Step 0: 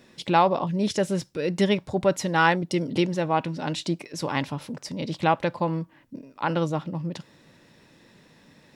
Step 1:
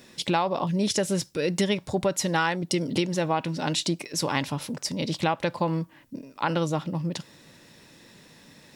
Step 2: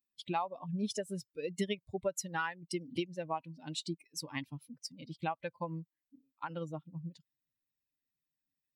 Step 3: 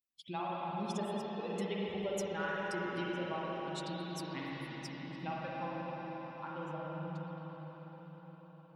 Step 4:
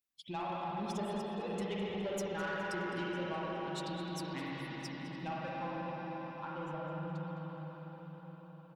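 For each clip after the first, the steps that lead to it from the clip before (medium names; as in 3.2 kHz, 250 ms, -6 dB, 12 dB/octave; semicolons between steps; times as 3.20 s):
treble shelf 4.1 kHz +9.5 dB; compression 6:1, threshold -22 dBFS, peak gain reduction 9 dB; trim +1.5 dB
expander on every frequency bin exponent 2; upward expansion 1.5:1, over -39 dBFS; trim -5.5 dB
reverberation RT60 5.9 s, pre-delay 39 ms, DRR -7 dB; trim -7 dB
saturation -33 dBFS, distortion -16 dB; feedback delay 209 ms, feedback 45%, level -16 dB; trim +1.5 dB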